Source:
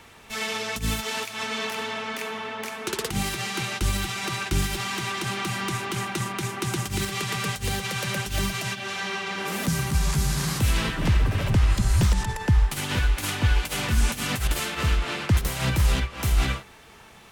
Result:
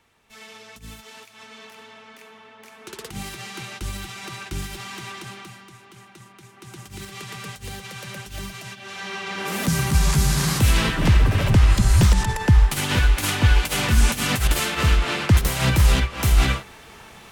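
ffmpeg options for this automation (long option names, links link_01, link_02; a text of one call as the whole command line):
ffmpeg -i in.wav -af "volume=17dB,afade=type=in:start_time=2.59:duration=0.62:silence=0.398107,afade=type=out:start_time=5.11:duration=0.54:silence=0.251189,afade=type=in:start_time=6.52:duration=0.69:silence=0.298538,afade=type=in:start_time=8.79:duration=1.16:silence=0.237137" out.wav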